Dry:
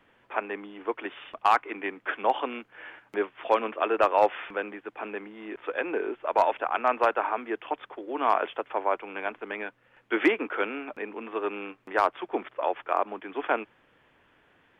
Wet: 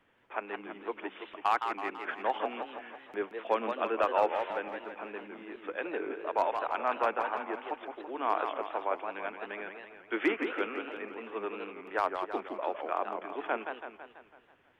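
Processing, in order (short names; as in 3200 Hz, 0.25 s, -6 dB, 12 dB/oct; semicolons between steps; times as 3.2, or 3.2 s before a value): 3.22–3.83 resonant low shelf 160 Hz -7 dB, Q 3; warbling echo 0.165 s, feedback 55%, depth 214 cents, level -6.5 dB; gain -6.5 dB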